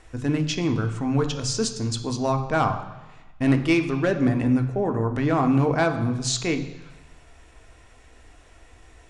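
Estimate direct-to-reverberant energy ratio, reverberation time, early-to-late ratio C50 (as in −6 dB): 5.5 dB, 1.1 s, 10.5 dB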